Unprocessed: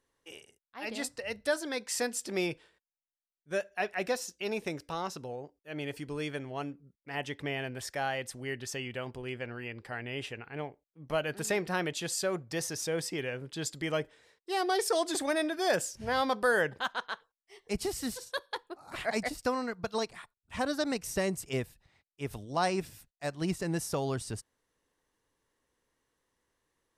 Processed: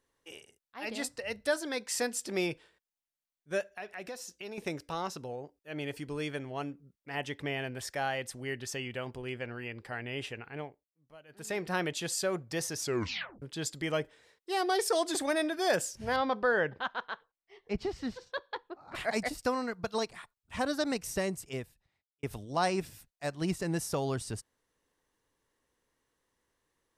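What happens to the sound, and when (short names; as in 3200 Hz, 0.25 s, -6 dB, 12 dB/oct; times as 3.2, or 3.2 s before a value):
3.64–4.58 compressor 3:1, threshold -41 dBFS
10.49–11.75 dip -23 dB, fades 0.47 s
12.81 tape stop 0.61 s
16.16–18.95 air absorption 210 m
21.02–22.23 fade out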